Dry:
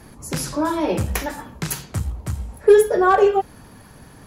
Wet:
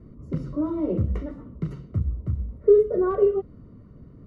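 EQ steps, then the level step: boxcar filter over 53 samples; distance through air 76 m; 0.0 dB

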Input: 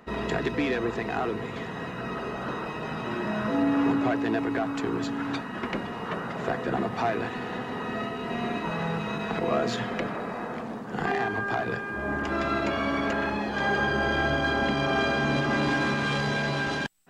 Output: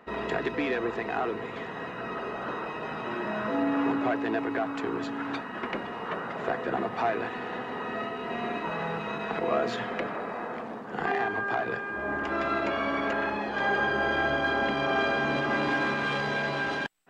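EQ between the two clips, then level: tone controls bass -9 dB, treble -9 dB; 0.0 dB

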